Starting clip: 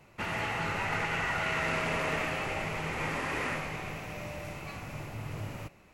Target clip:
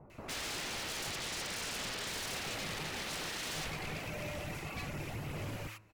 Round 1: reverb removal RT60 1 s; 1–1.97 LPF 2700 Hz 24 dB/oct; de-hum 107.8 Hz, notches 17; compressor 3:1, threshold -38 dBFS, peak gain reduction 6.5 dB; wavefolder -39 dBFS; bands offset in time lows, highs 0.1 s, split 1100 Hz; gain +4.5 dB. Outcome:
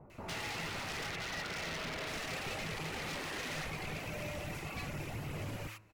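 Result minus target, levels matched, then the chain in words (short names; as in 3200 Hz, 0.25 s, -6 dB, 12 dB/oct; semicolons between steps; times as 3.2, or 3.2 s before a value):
compressor: peak gain reduction +6.5 dB
reverb removal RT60 1 s; 1–1.97 LPF 2700 Hz 24 dB/oct; de-hum 107.8 Hz, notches 17; wavefolder -39 dBFS; bands offset in time lows, highs 0.1 s, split 1100 Hz; gain +4.5 dB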